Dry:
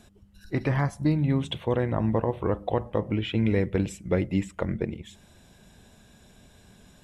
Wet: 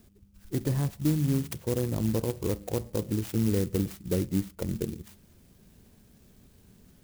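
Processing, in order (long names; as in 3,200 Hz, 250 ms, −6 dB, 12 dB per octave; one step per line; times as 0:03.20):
flat-topped bell 1,300 Hz −9.5 dB 2.5 octaves
converter with an unsteady clock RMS 0.094 ms
level −2 dB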